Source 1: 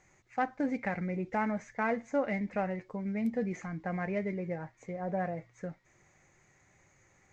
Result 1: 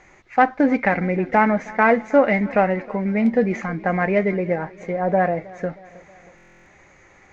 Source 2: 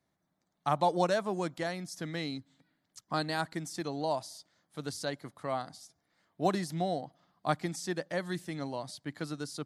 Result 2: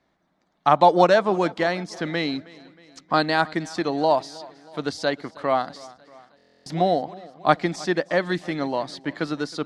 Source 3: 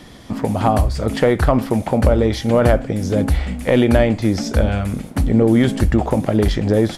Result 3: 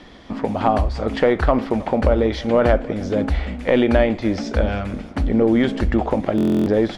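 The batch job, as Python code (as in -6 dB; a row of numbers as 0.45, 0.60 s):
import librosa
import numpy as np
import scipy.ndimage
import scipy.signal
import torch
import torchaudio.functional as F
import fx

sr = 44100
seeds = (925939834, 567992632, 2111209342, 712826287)

y = scipy.signal.sosfilt(scipy.signal.butter(2, 4000.0, 'lowpass', fs=sr, output='sos'), x)
y = fx.peak_eq(y, sr, hz=120.0, db=-10.0, octaves=1.1)
y = fx.echo_feedback(y, sr, ms=316, feedback_pct=55, wet_db=-21.5)
y = fx.buffer_glitch(y, sr, at_s=(6.36,), block=1024, repeats=12)
y = librosa.util.normalize(y) * 10.0 ** (-2 / 20.0)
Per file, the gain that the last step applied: +16.0, +13.0, -0.5 dB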